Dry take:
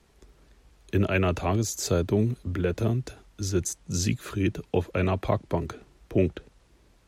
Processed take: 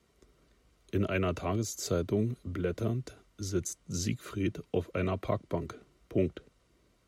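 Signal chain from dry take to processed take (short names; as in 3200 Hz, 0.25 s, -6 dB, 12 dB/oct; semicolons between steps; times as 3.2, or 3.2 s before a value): notch comb 840 Hz; gain -5 dB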